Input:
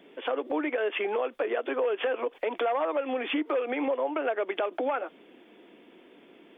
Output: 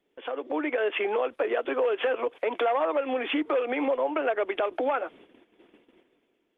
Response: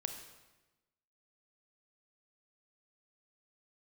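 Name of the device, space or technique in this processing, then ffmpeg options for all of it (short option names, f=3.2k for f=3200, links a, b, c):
video call: -af "highpass=f=160:p=1,dynaudnorm=f=110:g=9:m=7dB,agate=range=-14dB:threshold=-46dB:ratio=16:detection=peak,volume=-4.5dB" -ar 48000 -c:a libopus -b:a 24k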